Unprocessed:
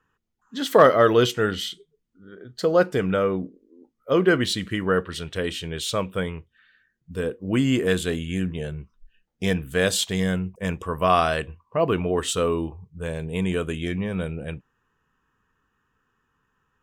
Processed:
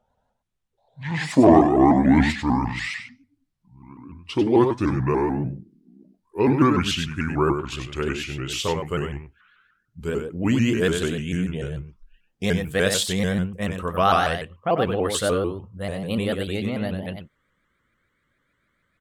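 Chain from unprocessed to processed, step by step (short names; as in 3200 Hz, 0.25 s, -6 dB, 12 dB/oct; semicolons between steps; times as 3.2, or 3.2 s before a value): speed glide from 52% -> 125%; echo 95 ms -6.5 dB; shaped vibrato saw up 6.8 Hz, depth 160 cents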